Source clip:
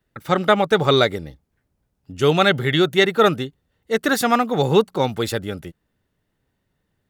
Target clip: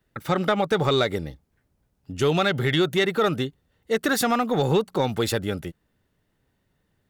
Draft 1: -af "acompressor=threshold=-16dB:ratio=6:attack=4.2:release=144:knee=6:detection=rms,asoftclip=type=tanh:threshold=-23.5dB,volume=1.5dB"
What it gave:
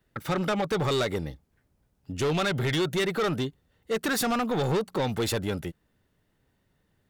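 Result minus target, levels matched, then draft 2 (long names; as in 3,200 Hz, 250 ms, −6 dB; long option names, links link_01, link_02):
soft clipping: distortion +14 dB
-af "acompressor=threshold=-16dB:ratio=6:attack=4.2:release=144:knee=6:detection=rms,asoftclip=type=tanh:threshold=-12dB,volume=1.5dB"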